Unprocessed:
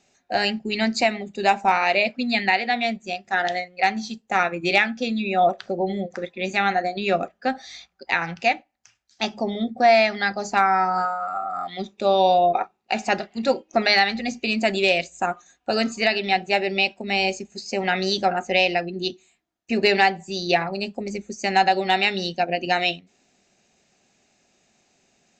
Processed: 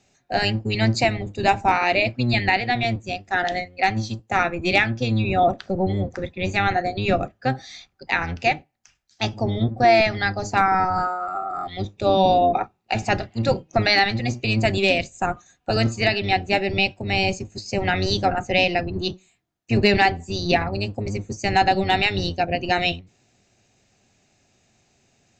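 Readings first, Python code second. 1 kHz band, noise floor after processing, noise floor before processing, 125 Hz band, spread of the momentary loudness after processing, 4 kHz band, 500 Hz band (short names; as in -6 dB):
0.0 dB, -64 dBFS, -68 dBFS, +12.0 dB, 9 LU, 0.0 dB, 0.0 dB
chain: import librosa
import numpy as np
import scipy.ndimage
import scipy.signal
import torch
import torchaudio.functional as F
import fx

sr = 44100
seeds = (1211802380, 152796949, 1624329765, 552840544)

y = fx.octave_divider(x, sr, octaves=1, level_db=3.0)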